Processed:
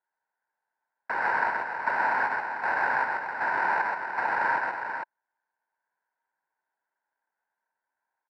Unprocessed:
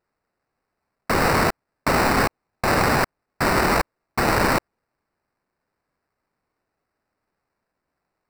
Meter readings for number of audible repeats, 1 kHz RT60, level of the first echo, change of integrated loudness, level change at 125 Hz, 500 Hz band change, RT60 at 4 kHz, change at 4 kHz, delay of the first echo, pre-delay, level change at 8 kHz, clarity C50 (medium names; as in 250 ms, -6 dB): 2, no reverb, -3.0 dB, -6.0 dB, under -25 dB, -13.5 dB, no reverb, -21.0 dB, 130 ms, no reverb, under -30 dB, no reverb